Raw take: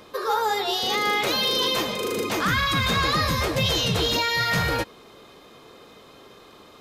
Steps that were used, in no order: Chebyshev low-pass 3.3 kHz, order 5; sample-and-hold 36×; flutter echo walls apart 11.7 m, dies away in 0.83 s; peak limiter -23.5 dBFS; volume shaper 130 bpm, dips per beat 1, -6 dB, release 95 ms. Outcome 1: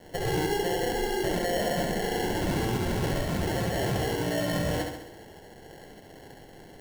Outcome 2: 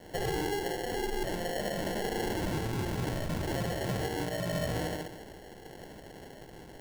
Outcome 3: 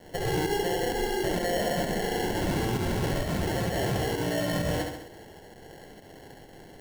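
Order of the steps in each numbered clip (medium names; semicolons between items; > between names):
Chebyshev low-pass > sample-and-hold > peak limiter > volume shaper > flutter echo; volume shaper > flutter echo > peak limiter > Chebyshev low-pass > sample-and-hold; Chebyshev low-pass > sample-and-hold > peak limiter > flutter echo > volume shaper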